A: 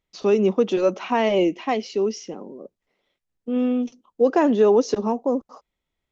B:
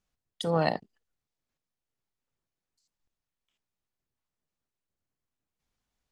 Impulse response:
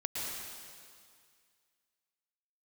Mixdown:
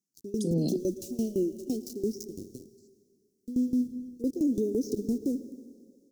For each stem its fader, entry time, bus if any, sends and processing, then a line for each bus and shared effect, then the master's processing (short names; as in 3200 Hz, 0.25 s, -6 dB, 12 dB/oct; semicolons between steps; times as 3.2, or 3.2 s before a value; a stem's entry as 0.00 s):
-3.0 dB, 0.00 s, send -18.5 dB, bell 900 Hz -3 dB 1.8 oct; sample gate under -35 dBFS; dB-ramp tremolo decaying 5.9 Hz, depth 25 dB
+0.5 dB, 0.00 s, no send, HPF 170 Hz 24 dB/oct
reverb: on, RT60 2.1 s, pre-delay 0.104 s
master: elliptic band-stop 350–5600 Hz, stop band 80 dB; AGC gain up to 10 dB; limiter -20 dBFS, peak gain reduction 10 dB